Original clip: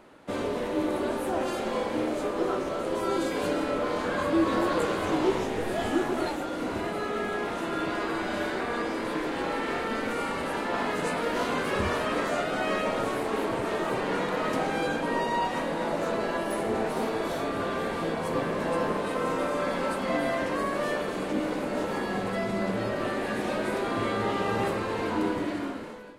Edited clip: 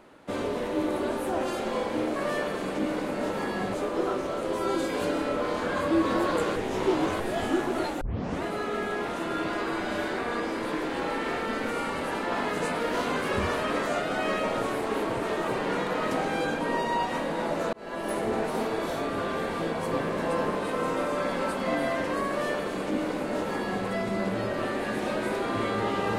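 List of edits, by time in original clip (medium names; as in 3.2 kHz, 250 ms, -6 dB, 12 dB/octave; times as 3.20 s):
4.98–5.62 s: reverse
6.43 s: tape start 0.42 s
16.15–16.53 s: fade in
20.70–22.28 s: copy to 2.16 s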